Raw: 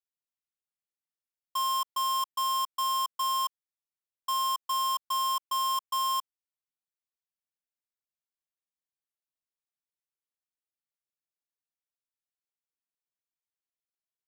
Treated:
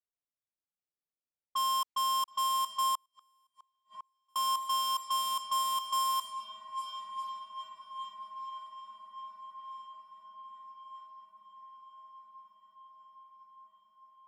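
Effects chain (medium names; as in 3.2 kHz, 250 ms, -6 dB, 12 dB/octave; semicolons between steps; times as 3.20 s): echo that smears into a reverb 984 ms, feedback 76%, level -9.5 dB; level-controlled noise filter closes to 890 Hz, open at -28.5 dBFS; 2.95–4.36 s: inverted gate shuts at -34 dBFS, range -41 dB; trim -1.5 dB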